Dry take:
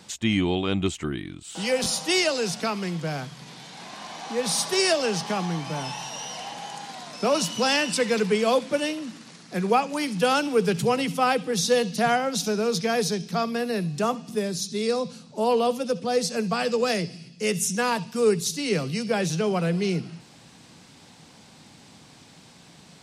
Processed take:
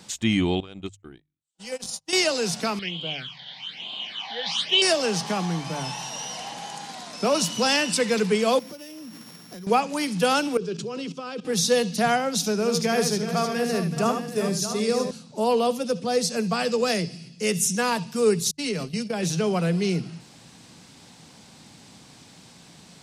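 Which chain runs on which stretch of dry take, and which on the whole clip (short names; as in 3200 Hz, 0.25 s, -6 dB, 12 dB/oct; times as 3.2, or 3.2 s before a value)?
0.6–2.13 dynamic EQ 7300 Hz, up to +6 dB, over -42 dBFS, Q 0.95 + compressor 4:1, threshold -26 dBFS + gate -29 dBFS, range -52 dB
2.79–4.82 synth low-pass 3100 Hz, resonance Q 9.4 + low shelf 370 Hz -11.5 dB + phaser stages 8, 1.1 Hz, lowest notch 330–1800 Hz
8.59–9.67 sample sorter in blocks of 8 samples + compressor 12:1, threshold -37 dBFS
10.57–11.45 level quantiser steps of 16 dB + speaker cabinet 170–6900 Hz, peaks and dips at 380 Hz +9 dB, 810 Hz -9 dB, 2000 Hz -9 dB
12.54–15.11 bell 3900 Hz -6 dB 0.24 oct + tapped delay 76/377/624/689 ms -7/-11.5/-11/-16.5 dB
18.51–19.23 gate -30 dBFS, range -45 dB + comb 4.7 ms, depth 40% + compressor 5:1, threshold -24 dBFS
whole clip: tone controls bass +2 dB, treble +3 dB; notches 50/100/150 Hz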